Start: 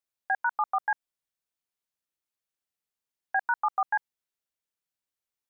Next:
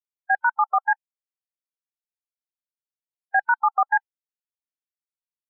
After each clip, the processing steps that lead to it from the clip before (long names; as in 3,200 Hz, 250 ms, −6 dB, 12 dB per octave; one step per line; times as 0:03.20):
noise reduction from a noise print of the clip's start 25 dB
level +7 dB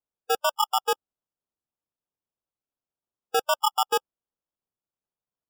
decimation without filtering 21×
level −3.5 dB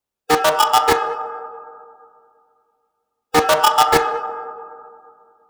convolution reverb RT60 2.3 s, pre-delay 6 ms, DRR 2.5 dB
highs frequency-modulated by the lows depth 0.4 ms
level +8.5 dB